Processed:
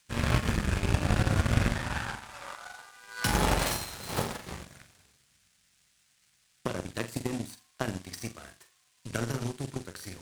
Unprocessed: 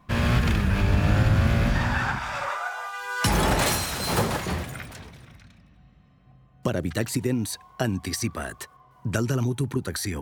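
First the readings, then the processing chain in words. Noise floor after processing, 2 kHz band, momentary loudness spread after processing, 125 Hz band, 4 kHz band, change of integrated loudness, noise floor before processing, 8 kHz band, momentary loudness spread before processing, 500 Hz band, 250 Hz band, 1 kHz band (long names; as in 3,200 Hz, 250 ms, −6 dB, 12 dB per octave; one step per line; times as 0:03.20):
−69 dBFS, −6.5 dB, 17 LU, −7.0 dB, −5.5 dB, −6.0 dB, −56 dBFS, −6.0 dB, 12 LU, −6.5 dB, −7.0 dB, −6.5 dB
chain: flutter between parallel walls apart 7.4 metres, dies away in 0.44 s
noise in a band 1,400–9,700 Hz −41 dBFS
power curve on the samples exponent 2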